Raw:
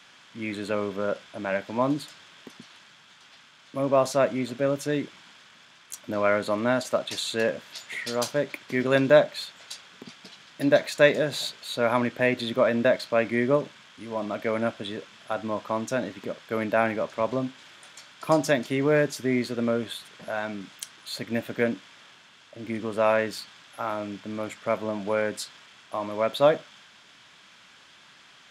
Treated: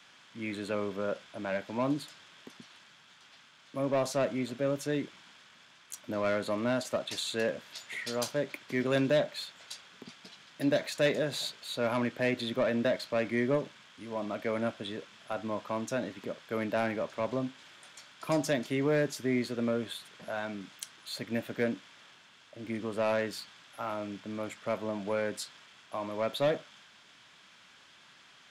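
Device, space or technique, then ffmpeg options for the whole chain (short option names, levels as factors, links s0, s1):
one-band saturation: -filter_complex "[0:a]acrossover=split=410|2800[s0][s1][s2];[s1]asoftclip=type=tanh:threshold=0.0794[s3];[s0][s3][s2]amix=inputs=3:normalize=0,volume=0.596"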